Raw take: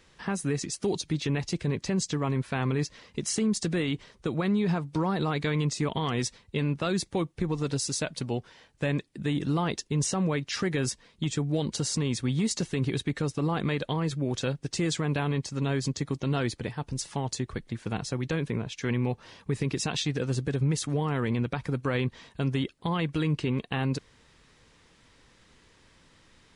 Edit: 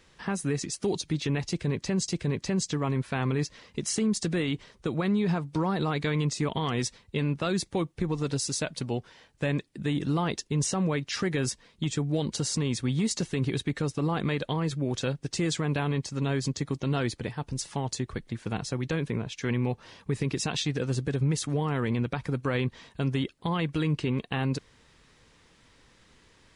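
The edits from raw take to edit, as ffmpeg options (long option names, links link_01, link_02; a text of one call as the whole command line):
ffmpeg -i in.wav -filter_complex "[0:a]asplit=2[link_01][link_02];[link_01]atrim=end=2.082[link_03];[link_02]atrim=start=1.478[link_04];[link_03][link_04]acrossfade=duration=0.004:curve1=hsin:curve2=hsin" out.wav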